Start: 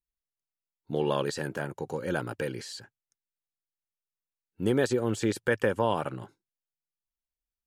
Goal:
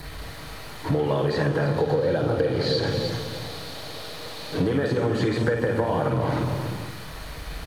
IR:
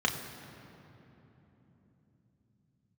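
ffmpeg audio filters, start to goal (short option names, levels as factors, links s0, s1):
-filter_complex "[0:a]aeval=exprs='val(0)+0.5*0.0188*sgn(val(0))':c=same,equalizer=f=1800:t=o:w=1.7:g=-4,bandreject=f=7500:w=18,aecho=1:1:306:0.2,acrossover=split=810|4600[s0][s1][s2];[s0]acompressor=threshold=0.0282:ratio=4[s3];[s1]acompressor=threshold=0.00891:ratio=4[s4];[s2]acompressor=threshold=0.002:ratio=4[s5];[s3][s4][s5]amix=inputs=3:normalize=0,asettb=1/sr,asplit=3[s6][s7][s8];[s6]atrim=end=1.664[s9];[s7]atrim=start=1.66:end=4.67,asetpts=PTS-STARTPTS,afade=t=in:d=0.004:c=qsin,afade=t=out:st=3.006:d=0.004:c=qsin,equalizer=f=500:t=o:w=1:g=7,equalizer=f=2000:t=o:w=1:g=-3,equalizer=f=4000:t=o:w=1:g=8[s10];[s8]atrim=start=4.666[s11];[s9][s10]acrossfade=d=0.004:c1=hsin:c2=qsin[s12];[s12][s11]acrossfade=d=0.004:c1=qsin:c2=hsin[s13];[1:a]atrim=start_sample=2205,afade=t=out:st=0.43:d=0.01,atrim=end_sample=19404,asetrate=27342,aresample=44100[s14];[s13][s14]afir=irnorm=-1:irlink=0,acompressor=threshold=0.0891:ratio=10,volume=1.26"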